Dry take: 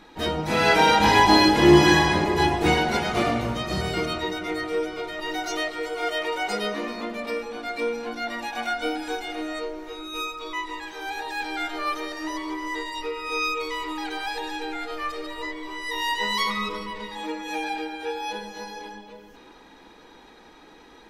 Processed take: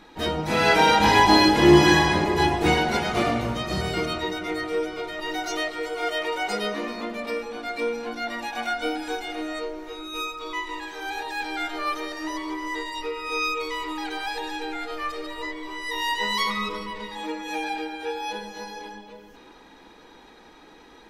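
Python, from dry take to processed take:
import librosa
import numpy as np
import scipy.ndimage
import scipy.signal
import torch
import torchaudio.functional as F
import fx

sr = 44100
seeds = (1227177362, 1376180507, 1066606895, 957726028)

y = fx.room_flutter(x, sr, wall_m=11.7, rt60_s=0.44, at=(10.34, 11.23))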